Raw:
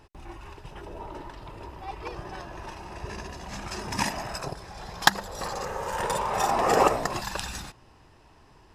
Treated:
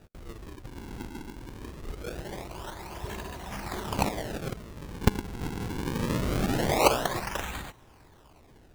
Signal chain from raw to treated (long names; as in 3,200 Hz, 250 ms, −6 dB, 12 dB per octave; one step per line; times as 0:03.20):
0:06.41–0:06.84: high-pass filter 740 Hz 12 dB per octave
sample-and-hold swept by an LFO 41×, swing 160% 0.23 Hz